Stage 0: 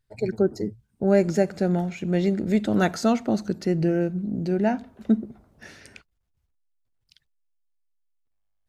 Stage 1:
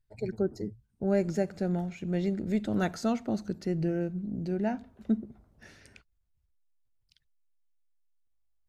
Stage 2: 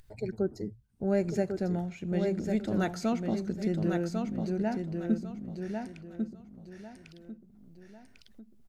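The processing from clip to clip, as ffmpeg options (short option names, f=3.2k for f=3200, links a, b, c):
-af "lowshelf=f=93:g=10,volume=-8.5dB"
-af "aecho=1:1:1098|2196|3294:0.562|0.141|0.0351,acompressor=mode=upward:threshold=-41dB:ratio=2.5,volume=-1dB"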